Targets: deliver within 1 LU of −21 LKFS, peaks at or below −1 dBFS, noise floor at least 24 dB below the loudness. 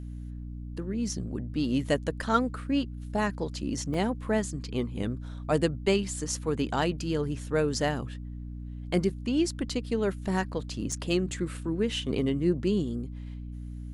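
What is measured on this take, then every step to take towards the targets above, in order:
number of dropouts 2; longest dropout 3.3 ms; mains hum 60 Hz; hum harmonics up to 300 Hz; level of the hum −36 dBFS; integrated loudness −30.0 LKFS; sample peak −10.5 dBFS; target loudness −21.0 LKFS
→ repair the gap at 0:03.94/0:10.92, 3.3 ms
hum removal 60 Hz, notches 5
level +9 dB

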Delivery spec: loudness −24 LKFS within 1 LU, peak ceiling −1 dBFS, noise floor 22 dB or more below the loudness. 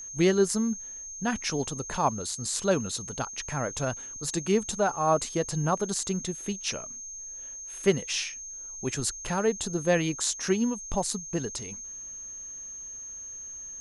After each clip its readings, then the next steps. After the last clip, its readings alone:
interfering tone 6,400 Hz; level of the tone −38 dBFS; integrated loudness −29.5 LKFS; sample peak −9.5 dBFS; target loudness −24.0 LKFS
→ notch filter 6,400 Hz, Q 30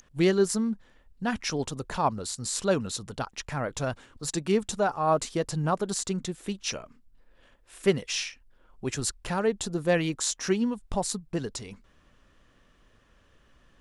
interfering tone none found; integrated loudness −29.0 LKFS; sample peak −10.0 dBFS; target loudness −24.0 LKFS
→ level +5 dB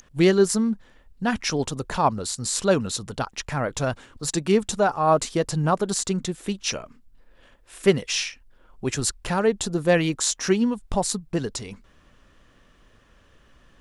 integrated loudness −24.0 LKFS; sample peak −5.0 dBFS; background noise floor −57 dBFS

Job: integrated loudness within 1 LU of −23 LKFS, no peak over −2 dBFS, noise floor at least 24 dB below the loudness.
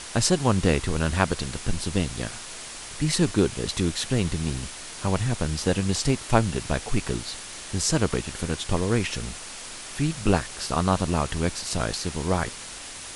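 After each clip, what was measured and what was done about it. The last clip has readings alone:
background noise floor −39 dBFS; target noise floor −51 dBFS; integrated loudness −26.5 LKFS; sample peak −4.0 dBFS; target loudness −23.0 LKFS
→ broadband denoise 12 dB, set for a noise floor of −39 dBFS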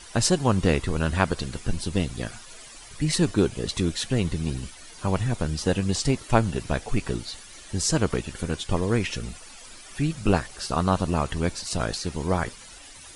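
background noise floor −45 dBFS; target noise floor −50 dBFS
→ broadband denoise 6 dB, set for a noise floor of −45 dBFS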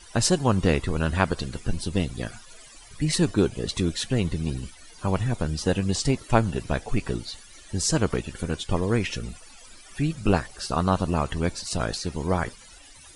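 background noise floor −48 dBFS; target noise floor −50 dBFS
→ broadband denoise 6 dB, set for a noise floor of −48 dBFS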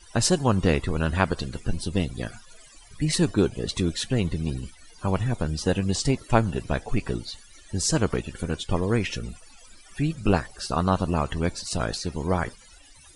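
background noise floor −51 dBFS; integrated loudness −26.5 LKFS; sample peak −4.0 dBFS; target loudness −23.0 LKFS
→ level +3.5 dB
brickwall limiter −2 dBFS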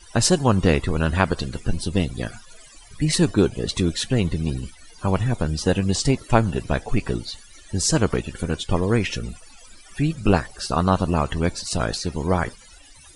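integrated loudness −23.0 LKFS; sample peak −2.0 dBFS; background noise floor −47 dBFS

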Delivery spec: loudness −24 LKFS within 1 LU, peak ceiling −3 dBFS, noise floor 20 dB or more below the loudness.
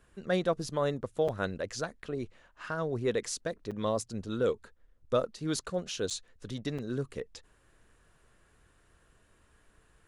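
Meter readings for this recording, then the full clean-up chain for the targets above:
number of dropouts 4; longest dropout 6.0 ms; integrated loudness −34.0 LKFS; sample peak −16.5 dBFS; target loudness −24.0 LKFS
→ repair the gap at 0:01.28/0:03.71/0:06.10/0:06.78, 6 ms
level +10 dB

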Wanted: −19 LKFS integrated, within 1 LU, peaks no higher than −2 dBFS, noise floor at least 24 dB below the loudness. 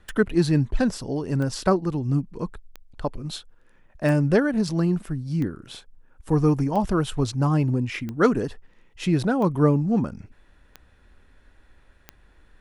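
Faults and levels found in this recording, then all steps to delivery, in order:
number of clicks 10; integrated loudness −24.0 LKFS; sample peak −5.0 dBFS; target loudness −19.0 LKFS
→ click removal
level +5 dB
brickwall limiter −2 dBFS

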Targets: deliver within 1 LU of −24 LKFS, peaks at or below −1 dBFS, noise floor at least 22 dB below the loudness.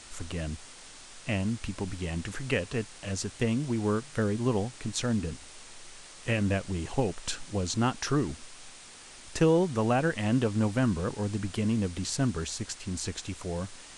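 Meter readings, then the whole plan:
background noise floor −49 dBFS; target noise floor −53 dBFS; integrated loudness −30.5 LKFS; sample peak −12.5 dBFS; target loudness −24.0 LKFS
→ broadband denoise 6 dB, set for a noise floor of −49 dBFS
level +6.5 dB

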